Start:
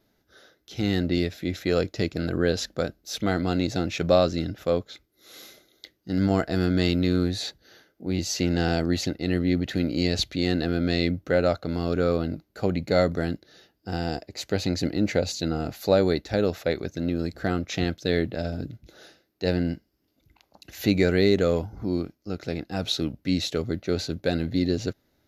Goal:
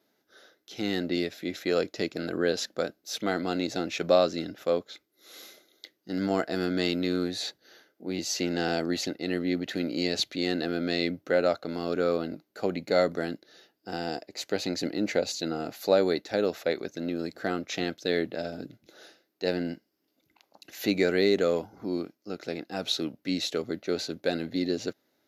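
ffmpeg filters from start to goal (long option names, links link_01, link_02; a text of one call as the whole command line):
ffmpeg -i in.wav -af "highpass=260,volume=-1.5dB" out.wav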